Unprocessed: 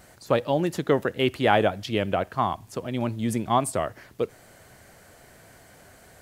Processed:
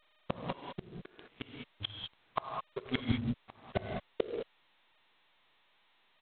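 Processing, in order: gate with hold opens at -40 dBFS; low-pass opened by the level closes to 1400 Hz, open at -21.5 dBFS; notches 60/120/180/240/300 Hz; spectral noise reduction 21 dB; 1.02–3.4 dynamic EQ 110 Hz, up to +5 dB, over -42 dBFS, Q 0.87; comb 1.8 ms, depth 58%; compressor 10:1, threshold -26 dBFS, peak gain reduction 12.5 dB; flipped gate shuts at -24 dBFS, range -41 dB; crossover distortion -49 dBFS; air absorption 180 m; non-linear reverb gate 0.23 s rising, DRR 1.5 dB; gain +8.5 dB; G.726 16 kbps 8000 Hz

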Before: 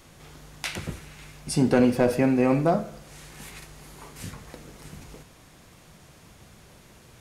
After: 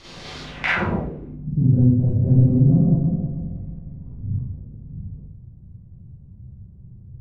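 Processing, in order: 2–4.43 regenerating reverse delay 0.158 s, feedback 59%, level 0 dB; Schroeder reverb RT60 0.57 s, combs from 32 ms, DRR -8 dB; low-pass sweep 4500 Hz -> 110 Hz, 0.41–1.62; gain +3.5 dB

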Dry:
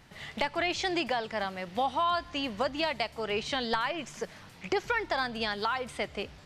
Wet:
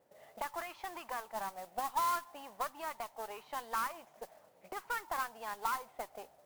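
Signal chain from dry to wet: auto-wah 530–1200 Hz, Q 4.8, up, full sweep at -25 dBFS; modulation noise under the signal 12 dB; added harmonics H 8 -26 dB, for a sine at -22 dBFS; gain +1 dB

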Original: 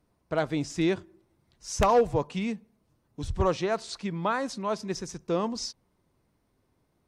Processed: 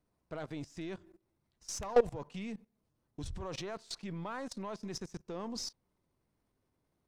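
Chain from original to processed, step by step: half-wave gain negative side -3 dB; level quantiser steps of 20 dB

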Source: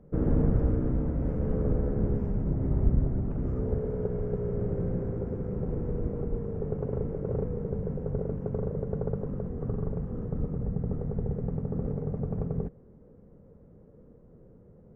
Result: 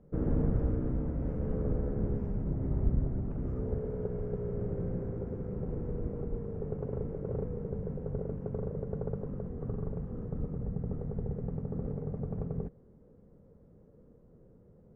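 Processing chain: LPF 8100 Hz; gain -4.5 dB

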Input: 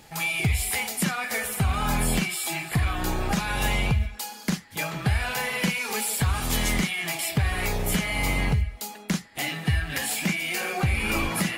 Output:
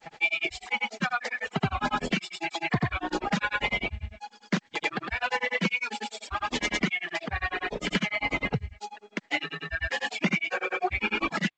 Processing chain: reverb removal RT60 1.8 s; three-band isolator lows -16 dB, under 200 Hz, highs -12 dB, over 4000 Hz; grains, grains 10/s, pitch spread up and down by 0 st; gain +6.5 dB; G.722 64 kbps 16000 Hz

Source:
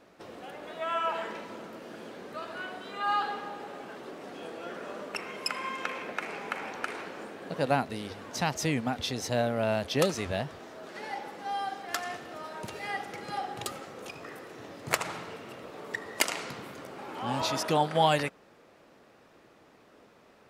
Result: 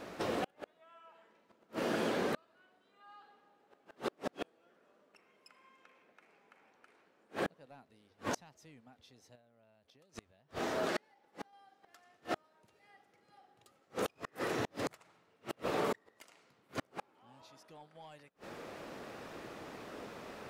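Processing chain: 9.35–11.53 compressor 12:1, threshold -35 dBFS, peak gain reduction 15.5 dB; soft clip -16 dBFS, distortion -18 dB; flipped gate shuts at -33 dBFS, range -39 dB; gain +10.5 dB

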